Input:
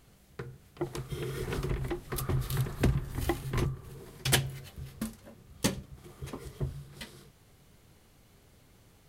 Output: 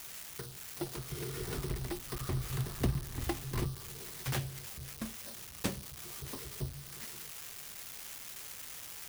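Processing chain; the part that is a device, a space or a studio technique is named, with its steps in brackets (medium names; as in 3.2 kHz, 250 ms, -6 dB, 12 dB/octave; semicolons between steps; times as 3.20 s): budget class-D amplifier (dead-time distortion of 0.2 ms; zero-crossing glitches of -22 dBFS); trim -4.5 dB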